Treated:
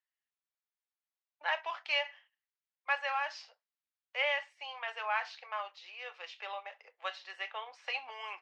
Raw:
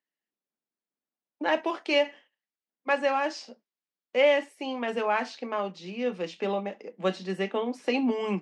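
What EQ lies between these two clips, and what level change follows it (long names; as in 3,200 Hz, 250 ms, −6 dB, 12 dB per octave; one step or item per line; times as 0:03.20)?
Bessel high-pass filter 1,200 Hz, order 6
high-frequency loss of the air 160 metres
0.0 dB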